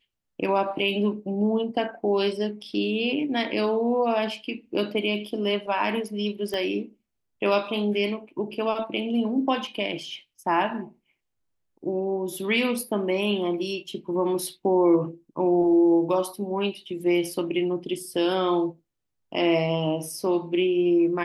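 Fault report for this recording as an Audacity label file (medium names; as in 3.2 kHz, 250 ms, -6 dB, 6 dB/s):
6.540000	6.540000	pop -18 dBFS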